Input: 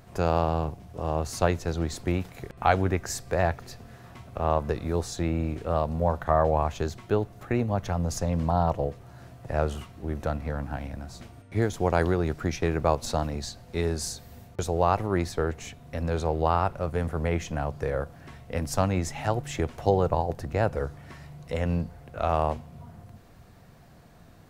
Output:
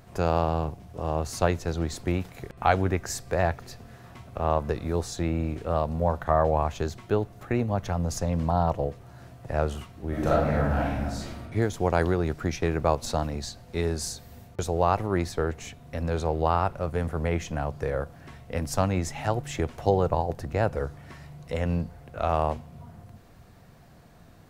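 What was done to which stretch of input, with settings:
10.09–11.43 s: reverb throw, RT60 0.96 s, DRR -7.5 dB

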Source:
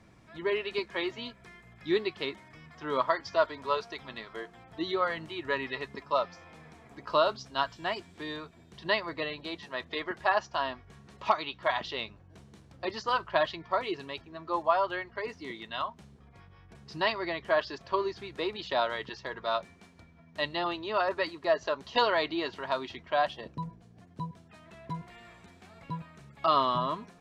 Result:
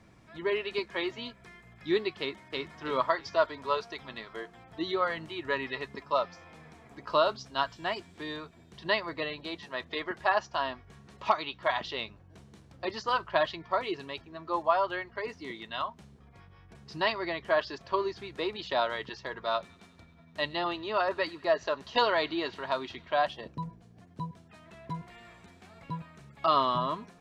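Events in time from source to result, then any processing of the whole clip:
2.20–2.77 s: echo throw 320 ms, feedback 30%, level -1 dB
19.50–23.19 s: feedback echo behind a high-pass 96 ms, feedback 74%, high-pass 1.8 kHz, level -23 dB

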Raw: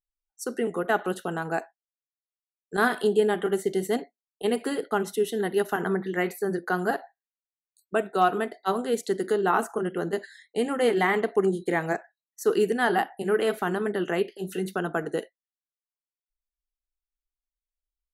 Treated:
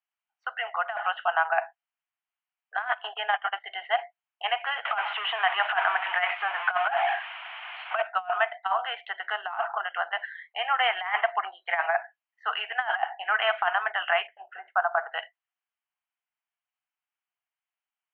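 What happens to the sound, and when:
2.82–3.64 s: gate -28 dBFS, range -17 dB
4.85–8.02 s: jump at every zero crossing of -28.5 dBFS
14.27–15.12 s: low-pass 1.5 kHz 24 dB/octave
whole clip: Chebyshev band-pass 680–3100 Hz, order 5; compressor with a negative ratio -30 dBFS, ratio -0.5; trim +7 dB

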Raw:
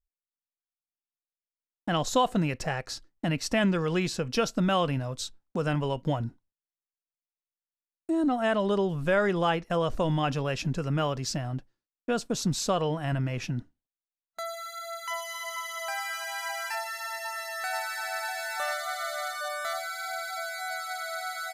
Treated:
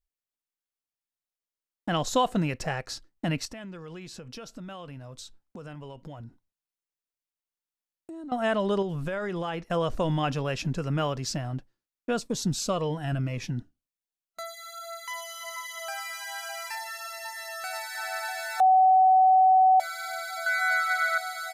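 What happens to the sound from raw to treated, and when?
3.45–8.32 s: compression 4:1, threshold -41 dBFS
8.82–9.63 s: compression 10:1, threshold -27 dBFS
12.20–17.95 s: Shepard-style phaser falling 1.8 Hz
18.60–19.80 s: bleep 753 Hz -15 dBFS
20.46–21.18 s: peaking EQ 1.7 kHz +14.5 dB 1.1 oct

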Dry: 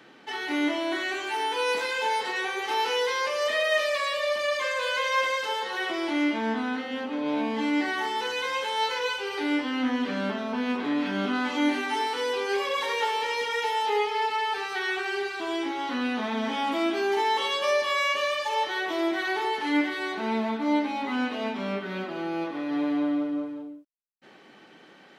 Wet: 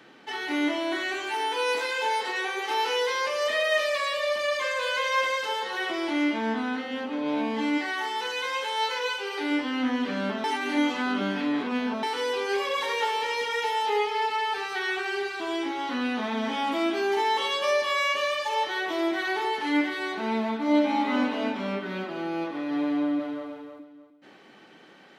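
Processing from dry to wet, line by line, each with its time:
1.34–3.15 s: high-pass 240 Hz 24 dB/octave
7.77–9.50 s: high-pass 630 Hz -> 200 Hz 6 dB/octave
10.44–12.03 s: reverse
20.62–21.18 s: reverb throw, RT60 2.2 s, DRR 0 dB
22.88–23.48 s: echo throw 310 ms, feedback 25%, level -6 dB

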